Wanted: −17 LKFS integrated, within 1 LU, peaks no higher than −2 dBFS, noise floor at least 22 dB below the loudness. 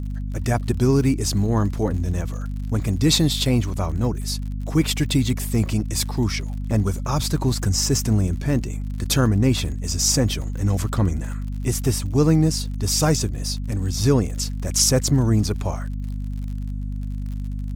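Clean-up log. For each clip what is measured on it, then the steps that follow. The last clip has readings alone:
crackle rate 52 per second; mains hum 50 Hz; hum harmonics up to 250 Hz; level of the hum −25 dBFS; integrated loudness −22.0 LKFS; sample peak −5.5 dBFS; target loudness −17.0 LKFS
→ click removal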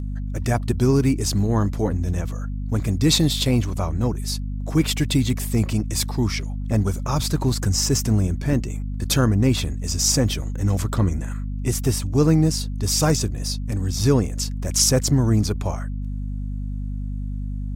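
crackle rate 0.56 per second; mains hum 50 Hz; hum harmonics up to 250 Hz; level of the hum −25 dBFS
→ mains-hum notches 50/100/150/200/250 Hz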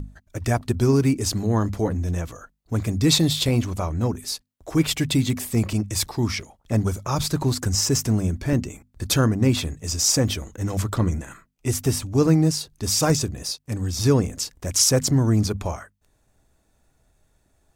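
mains hum none found; integrated loudness −22.5 LKFS; sample peak −5.5 dBFS; target loudness −17.0 LKFS
→ level +5.5 dB
brickwall limiter −2 dBFS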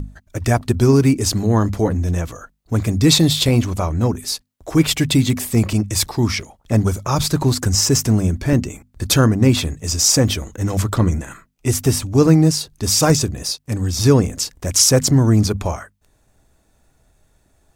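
integrated loudness −17.0 LKFS; sample peak −2.0 dBFS; background noise floor −61 dBFS

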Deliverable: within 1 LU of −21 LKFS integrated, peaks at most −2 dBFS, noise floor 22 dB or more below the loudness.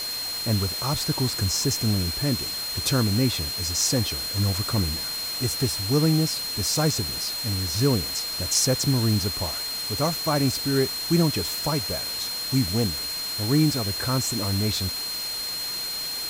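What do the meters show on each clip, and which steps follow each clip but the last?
interfering tone 4,200 Hz; level of the tone −29 dBFS; background noise floor −31 dBFS; target noise floor −46 dBFS; integrated loudness −24.0 LKFS; sample peak −9.0 dBFS; target loudness −21.0 LKFS
→ notch filter 4,200 Hz, Q 30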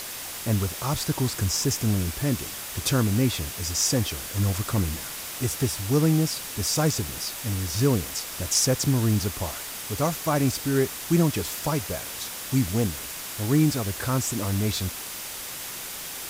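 interfering tone none found; background noise floor −36 dBFS; target noise floor −48 dBFS
→ noise reduction from a noise print 12 dB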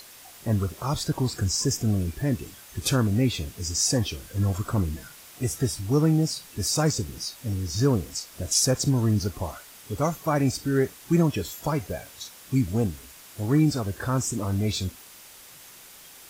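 background noise floor −48 dBFS; integrated loudness −26.0 LKFS; sample peak −10.0 dBFS; target loudness −21.0 LKFS
→ level +5 dB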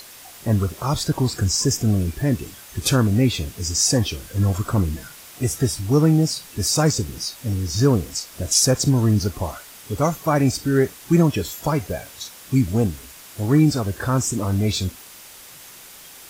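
integrated loudness −21.0 LKFS; sample peak −5.0 dBFS; background noise floor −43 dBFS

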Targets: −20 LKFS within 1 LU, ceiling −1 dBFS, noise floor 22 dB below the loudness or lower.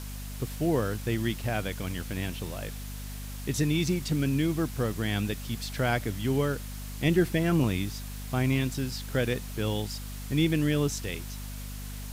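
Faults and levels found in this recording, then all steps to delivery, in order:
mains hum 50 Hz; hum harmonics up to 250 Hz; level of the hum −36 dBFS; background noise floor −38 dBFS; target noise floor −52 dBFS; integrated loudness −29.5 LKFS; sample peak −12.0 dBFS; target loudness −20.0 LKFS
→ hum removal 50 Hz, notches 5
noise reduction from a noise print 14 dB
level +9.5 dB

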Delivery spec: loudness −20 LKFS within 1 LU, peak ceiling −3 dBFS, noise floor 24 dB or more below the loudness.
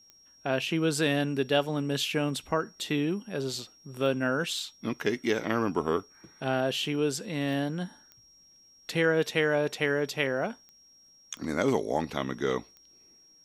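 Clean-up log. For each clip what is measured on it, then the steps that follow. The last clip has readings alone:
number of clicks 8; interfering tone 5,600 Hz; level of the tone −56 dBFS; integrated loudness −29.5 LKFS; sample peak −11.0 dBFS; target loudness −20.0 LKFS
→ click removal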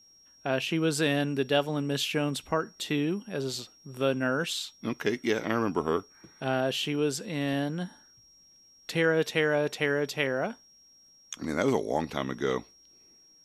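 number of clicks 0; interfering tone 5,600 Hz; level of the tone −56 dBFS
→ notch filter 5,600 Hz, Q 30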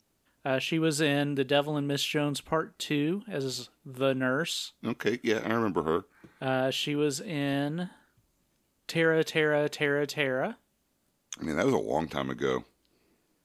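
interfering tone none found; integrated loudness −29.5 LKFS; sample peak −11.0 dBFS; target loudness −20.0 LKFS
→ level +9.5 dB
brickwall limiter −3 dBFS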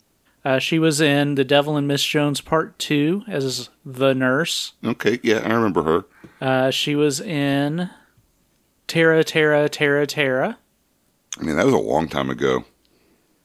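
integrated loudness −20.0 LKFS; sample peak −3.0 dBFS; background noise floor −64 dBFS

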